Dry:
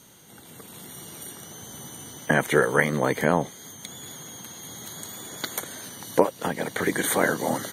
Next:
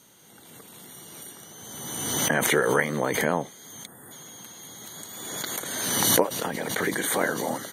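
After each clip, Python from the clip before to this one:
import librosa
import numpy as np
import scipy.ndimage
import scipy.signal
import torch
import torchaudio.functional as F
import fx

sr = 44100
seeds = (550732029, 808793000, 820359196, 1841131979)

y = fx.spec_box(x, sr, start_s=3.86, length_s=0.26, low_hz=2000.0, high_hz=7500.0, gain_db=-21)
y = fx.low_shelf(y, sr, hz=120.0, db=-8.5)
y = fx.pre_swell(y, sr, db_per_s=31.0)
y = F.gain(torch.from_numpy(y), -3.0).numpy()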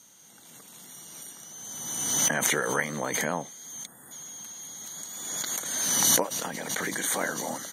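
y = fx.graphic_eq_15(x, sr, hz=(100, 400, 6300), db=(-8, -6, 9))
y = F.gain(torch.from_numpy(y), -3.5).numpy()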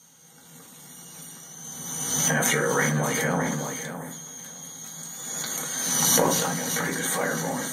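y = fx.echo_feedback(x, sr, ms=610, feedback_pct=17, wet_db=-10.5)
y = fx.rev_fdn(y, sr, rt60_s=0.5, lf_ratio=1.55, hf_ratio=0.5, size_ms=37.0, drr_db=-1.0)
y = fx.sustainer(y, sr, db_per_s=24.0)
y = F.gain(torch.from_numpy(y), -1.5).numpy()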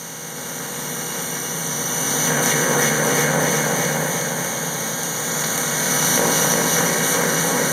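y = fx.bin_compress(x, sr, power=0.4)
y = fx.echo_feedback(y, sr, ms=361, feedback_pct=56, wet_db=-3.0)
y = F.gain(torch.from_numpy(y), -2.0).numpy()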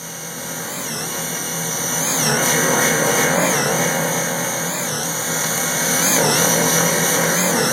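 y = fx.doubler(x, sr, ms=24.0, db=-2.5)
y = fx.record_warp(y, sr, rpm=45.0, depth_cents=160.0)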